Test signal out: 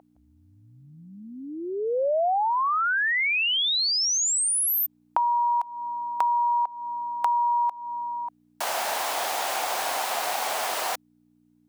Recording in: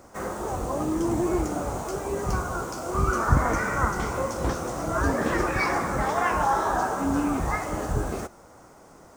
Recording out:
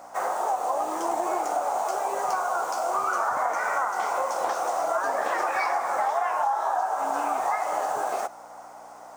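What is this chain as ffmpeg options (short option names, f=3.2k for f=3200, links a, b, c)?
-af "aeval=exprs='val(0)+0.0141*(sin(2*PI*60*n/s)+sin(2*PI*2*60*n/s)/2+sin(2*PI*3*60*n/s)/3+sin(2*PI*4*60*n/s)/4+sin(2*PI*5*60*n/s)/5)':c=same,highpass=f=740:t=q:w=3.4,acompressor=threshold=-24dB:ratio=10,volume=2dB"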